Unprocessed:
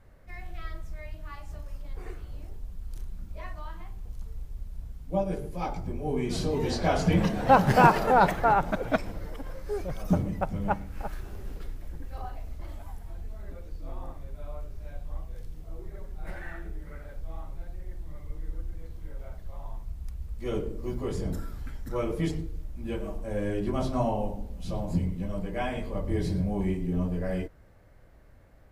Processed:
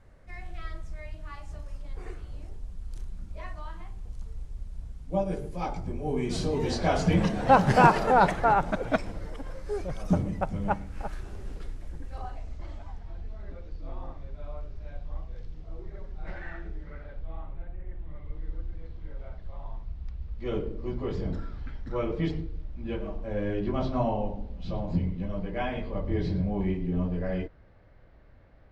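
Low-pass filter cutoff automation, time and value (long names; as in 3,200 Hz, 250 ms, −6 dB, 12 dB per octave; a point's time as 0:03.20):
low-pass filter 24 dB per octave
0:12.07 10,000 Hz
0:13.05 5,200 Hz
0:16.75 5,200 Hz
0:17.81 2,700 Hz
0:18.51 4,500 Hz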